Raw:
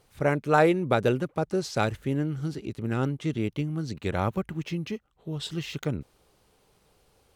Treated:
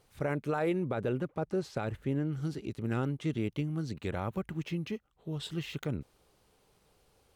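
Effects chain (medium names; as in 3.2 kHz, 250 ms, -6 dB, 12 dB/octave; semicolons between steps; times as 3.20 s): dynamic bell 5.6 kHz, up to -6 dB, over -50 dBFS, Q 1.4; peak limiter -19 dBFS, peak gain reduction 11 dB; 0.88–2.33 s: treble shelf 3.8 kHz -8 dB; trim -3.5 dB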